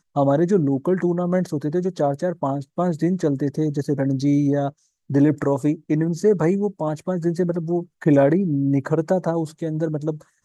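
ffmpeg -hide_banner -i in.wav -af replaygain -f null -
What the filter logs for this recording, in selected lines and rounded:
track_gain = +1.5 dB
track_peak = 0.395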